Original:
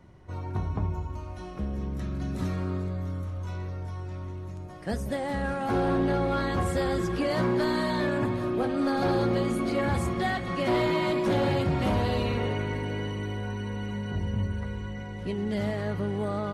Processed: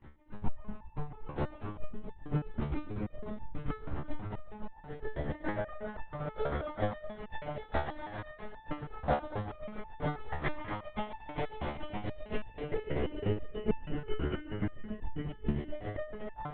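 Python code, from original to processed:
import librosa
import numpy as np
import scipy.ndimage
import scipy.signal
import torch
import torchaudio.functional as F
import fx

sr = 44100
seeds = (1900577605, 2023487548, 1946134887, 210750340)

p1 = fx.over_compress(x, sr, threshold_db=-32.0, ratio=-0.5)
p2 = x + (p1 * librosa.db_to_amplitude(2.0))
p3 = fx.rev_spring(p2, sr, rt60_s=3.4, pass_ms=(34, 56), chirp_ms=45, drr_db=-6.0)
p4 = fx.granulator(p3, sr, seeds[0], grain_ms=110.0, per_s=7.4, spray_ms=11.0, spread_st=0)
p5 = fx.chopper(p4, sr, hz=2.2, depth_pct=65, duty_pct=20)
p6 = p5 + fx.echo_single(p5, sr, ms=225, db=-8.5, dry=0)
p7 = fx.lpc_vocoder(p6, sr, seeds[1], excitation='whisper', order=8)
p8 = fx.resonator_held(p7, sr, hz=6.2, low_hz=73.0, high_hz=880.0)
y = p8 * librosa.db_to_amplitude(3.0)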